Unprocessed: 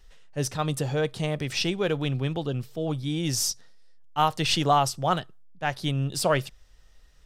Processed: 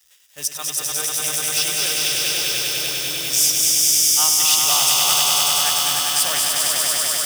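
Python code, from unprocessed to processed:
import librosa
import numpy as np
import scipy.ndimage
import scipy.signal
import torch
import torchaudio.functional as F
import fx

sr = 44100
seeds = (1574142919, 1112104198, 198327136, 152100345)

p1 = scipy.signal.sosfilt(scipy.signal.butter(4, 46.0, 'highpass', fs=sr, output='sos'), x)
p2 = fx.peak_eq(p1, sr, hz=71.0, db=13.0, octaves=1.1)
p3 = fx.echo_swell(p2, sr, ms=99, loudest=5, wet_db=-3.5)
p4 = fx.quant_companded(p3, sr, bits=4)
p5 = p3 + F.gain(torch.from_numpy(p4), -6.0).numpy()
p6 = np.diff(p5, prepend=0.0)
p7 = fx.notch(p6, sr, hz=4200.0, q=9.8)
p8 = p7 + fx.echo_wet_highpass(p7, sr, ms=223, feedback_pct=71, hz=1900.0, wet_db=-4.5, dry=0)
y = F.gain(torch.from_numpy(p8), 7.0).numpy()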